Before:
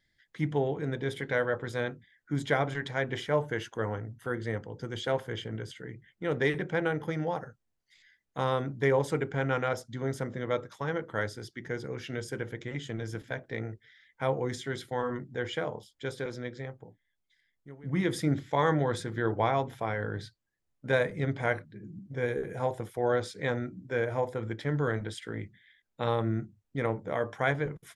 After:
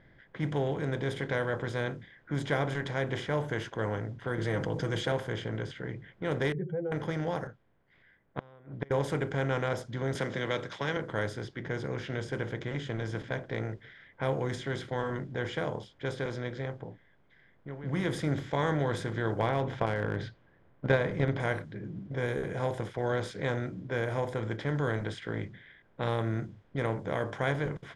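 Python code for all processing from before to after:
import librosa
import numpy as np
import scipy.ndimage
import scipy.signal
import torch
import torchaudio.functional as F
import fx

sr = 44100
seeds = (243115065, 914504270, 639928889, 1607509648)

y = fx.chain(x, sr, fx.comb(ms=6.3, depth=0.58),
    fx.env_flatten(amount_pct=50), at=(4.38, 5.12))
y = fx.chain(y, sr, fx.spec_expand(power=3.0),
    fx.peak_eq(hz=1600.0, db=-14.0, octaves=0.3),
    fx.notch_comb(f0_hz=290.0), at=(6.52, 6.92))
y = fx.chain(y, sr, fx.lowpass(hz=3800.0, slope=12),
    fx.gate_flip(shuts_db=-20.0, range_db=-32),
    fx.upward_expand(threshold_db=-54.0, expansion=1.5), at=(7.47, 8.91))
y = fx.chain(y, sr, fx.weighting(curve='D'),
    fx.band_squash(depth_pct=40), at=(10.15, 10.97))
y = fx.chain(y, sr, fx.air_absorb(metres=180.0),
    fx.transient(attack_db=10, sustain_db=4), at=(19.39, 21.4))
y = fx.bin_compress(y, sr, power=0.6)
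y = fx.env_lowpass(y, sr, base_hz=1800.0, full_db=-21.0)
y = fx.low_shelf(y, sr, hz=110.0, db=8.5)
y = F.gain(torch.from_numpy(y), -7.0).numpy()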